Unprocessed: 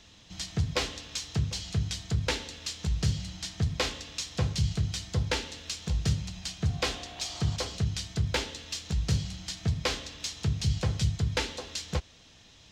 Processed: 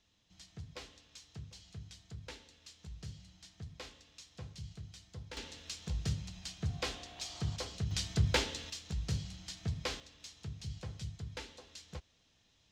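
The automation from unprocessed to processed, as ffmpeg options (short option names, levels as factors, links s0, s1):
-af "asetnsamples=n=441:p=0,asendcmd='5.37 volume volume -8dB;7.91 volume volume -1dB;8.7 volume volume -8.5dB;10 volume volume -15.5dB',volume=0.112"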